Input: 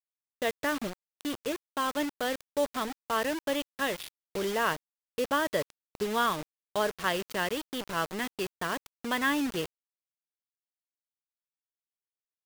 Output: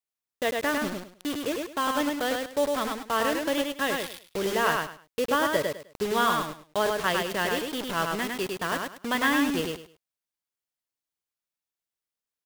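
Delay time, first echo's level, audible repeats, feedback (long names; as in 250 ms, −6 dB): 103 ms, −3.5 dB, 3, 23%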